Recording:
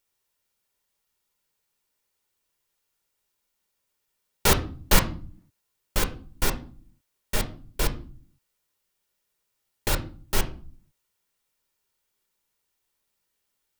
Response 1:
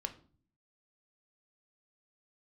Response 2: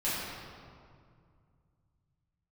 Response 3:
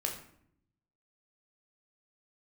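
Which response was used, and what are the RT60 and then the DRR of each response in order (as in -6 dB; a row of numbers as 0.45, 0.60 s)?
1; 0.45, 2.2, 0.65 s; 6.5, -11.5, 1.0 dB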